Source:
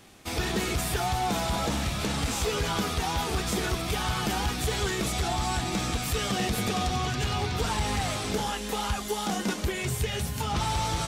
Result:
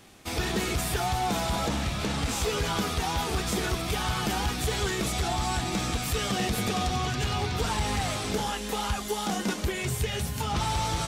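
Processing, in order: 1.68–2.29 high shelf 8100 Hz -6.5 dB

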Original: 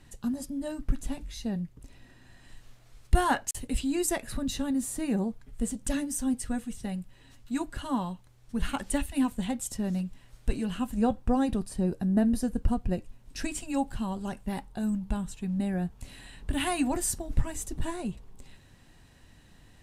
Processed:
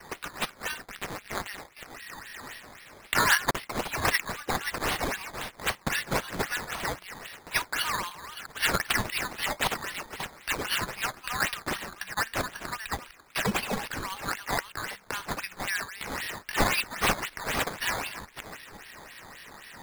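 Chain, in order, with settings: reverse delay 0.368 s, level -12.5 dB; inverse Chebyshev high-pass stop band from 630 Hz, stop band 40 dB; gate with hold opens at -58 dBFS; bell 2200 Hz +9 dB 0.73 oct; vocal rider within 4 dB 0.5 s; decimation with a swept rate 11×, swing 100% 3.8 Hz; 0.82–1.58 AM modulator 200 Hz, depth 95%; gain +9 dB

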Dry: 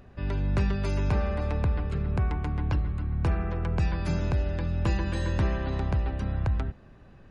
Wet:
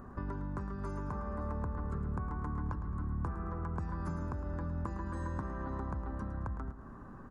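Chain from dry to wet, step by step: EQ curve 140 Hz 0 dB, 230 Hz +7 dB, 670 Hz -1 dB, 1100 Hz +13 dB, 1700 Hz +1 dB, 2500 Hz -16 dB, 3900 Hz -14 dB, 7600 Hz +1 dB; compressor 16:1, threshold -35 dBFS, peak gain reduction 17 dB; feedback echo 0.109 s, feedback 47%, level -11.5 dB

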